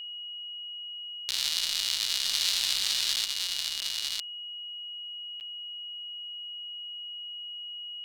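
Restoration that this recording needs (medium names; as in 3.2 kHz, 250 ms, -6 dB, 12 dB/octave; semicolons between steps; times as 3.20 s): band-stop 2.9 kHz, Q 30; interpolate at 1.31/3.16/3.81/5.40 s, 9 ms; inverse comb 954 ms -3.5 dB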